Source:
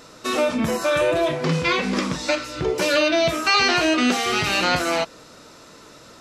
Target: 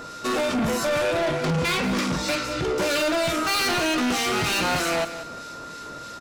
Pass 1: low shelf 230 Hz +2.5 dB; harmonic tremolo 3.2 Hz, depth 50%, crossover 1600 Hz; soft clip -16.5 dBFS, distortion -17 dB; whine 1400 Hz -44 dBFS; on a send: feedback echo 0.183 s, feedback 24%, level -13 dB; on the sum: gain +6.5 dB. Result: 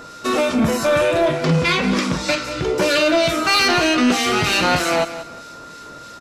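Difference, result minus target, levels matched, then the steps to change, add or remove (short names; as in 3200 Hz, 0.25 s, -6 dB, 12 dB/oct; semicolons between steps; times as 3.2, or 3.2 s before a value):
soft clip: distortion -10 dB
change: soft clip -28 dBFS, distortion -7 dB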